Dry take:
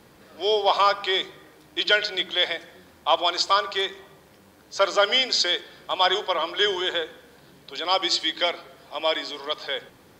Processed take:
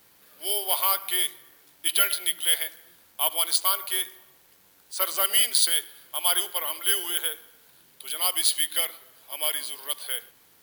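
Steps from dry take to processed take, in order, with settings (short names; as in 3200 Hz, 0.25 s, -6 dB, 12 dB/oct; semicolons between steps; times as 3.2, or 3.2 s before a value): tilt shelf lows -7 dB, about 1100 Hz; careless resampling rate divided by 3×, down none, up zero stuff; speed mistake 25 fps video run at 24 fps; gain -9.5 dB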